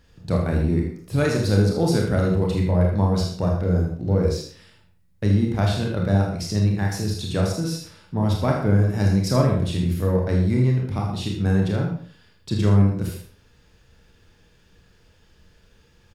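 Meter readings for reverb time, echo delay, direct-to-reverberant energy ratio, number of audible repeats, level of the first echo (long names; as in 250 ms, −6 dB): 0.45 s, 79 ms, −1.0 dB, 1, −8.5 dB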